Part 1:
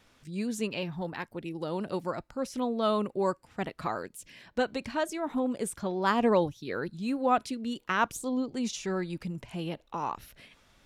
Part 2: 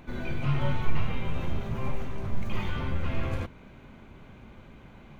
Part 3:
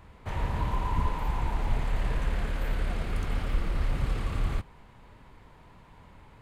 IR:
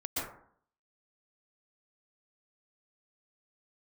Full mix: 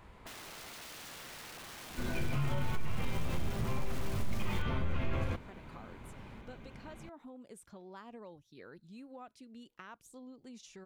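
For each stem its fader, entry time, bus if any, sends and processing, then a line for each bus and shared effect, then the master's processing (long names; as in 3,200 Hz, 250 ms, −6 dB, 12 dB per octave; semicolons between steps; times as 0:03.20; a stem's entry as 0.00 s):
−15.5 dB, 1.90 s, bus A, no send, no processing
−2.0 dB, 1.90 s, no bus, no send, no processing
−1.0 dB, 0.00 s, bus A, no send, sub-octave generator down 1 octave, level −1 dB; low-shelf EQ 220 Hz −5 dB; wrap-around overflow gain 35 dB
bus A: 0.0 dB, downward compressor 4 to 1, threshold −48 dBFS, peak gain reduction 11.5 dB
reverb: not used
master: brickwall limiter −23.5 dBFS, peak gain reduction 11 dB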